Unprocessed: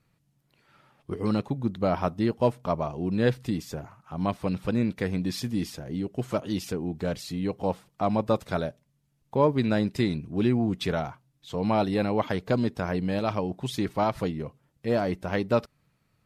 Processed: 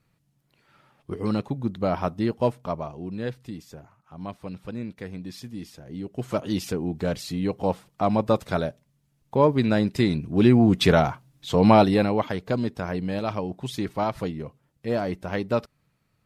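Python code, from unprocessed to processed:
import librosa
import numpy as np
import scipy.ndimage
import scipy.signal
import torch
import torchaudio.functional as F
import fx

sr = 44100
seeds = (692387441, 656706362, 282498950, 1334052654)

y = fx.gain(x, sr, db=fx.line((2.44, 0.5), (3.33, -8.0), (5.69, -8.0), (6.45, 3.0), (9.93, 3.0), (10.89, 10.0), (11.69, 10.0), (12.32, -0.5)))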